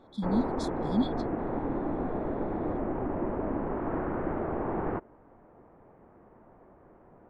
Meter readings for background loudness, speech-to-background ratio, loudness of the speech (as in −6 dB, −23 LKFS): −32.5 LKFS, 0.0 dB, −32.5 LKFS